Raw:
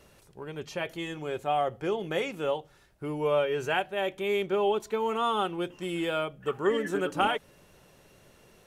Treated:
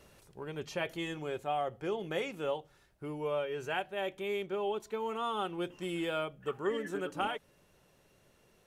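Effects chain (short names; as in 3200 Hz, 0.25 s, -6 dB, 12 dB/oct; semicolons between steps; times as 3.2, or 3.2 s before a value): vocal rider within 4 dB 0.5 s; gain -6 dB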